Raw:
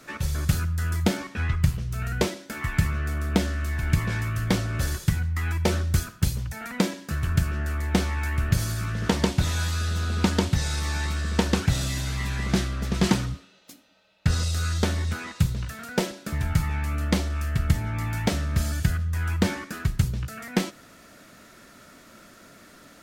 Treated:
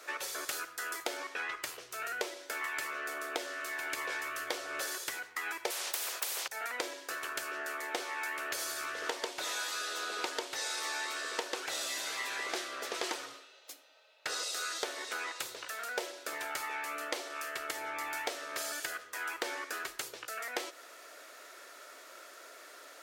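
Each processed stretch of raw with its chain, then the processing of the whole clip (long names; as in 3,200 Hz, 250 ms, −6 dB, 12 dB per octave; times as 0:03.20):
0:05.70–0:06.48: high-pass filter 81 Hz + every bin compressed towards the loudest bin 10 to 1
whole clip: inverse Chebyshev high-pass filter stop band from 200 Hz, stop band 40 dB; downward compressor 6 to 1, threshold −33 dBFS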